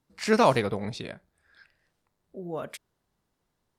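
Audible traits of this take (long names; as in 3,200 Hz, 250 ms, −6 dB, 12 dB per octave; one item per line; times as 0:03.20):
background noise floor −79 dBFS
spectral slope −4.5 dB per octave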